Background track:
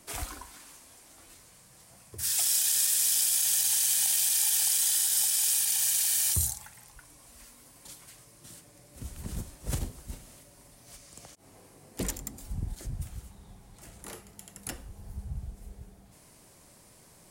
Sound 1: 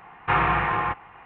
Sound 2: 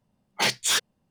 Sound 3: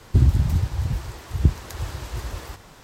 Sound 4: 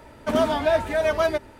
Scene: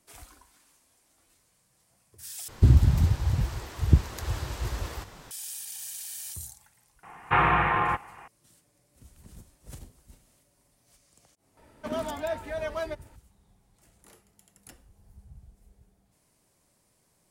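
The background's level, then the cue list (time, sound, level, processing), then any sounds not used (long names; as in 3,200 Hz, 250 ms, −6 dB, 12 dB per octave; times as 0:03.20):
background track −12.5 dB
0:02.48: overwrite with 3 −1 dB
0:07.03: mix in 1 −0.5 dB
0:11.57: mix in 4 −11 dB
not used: 2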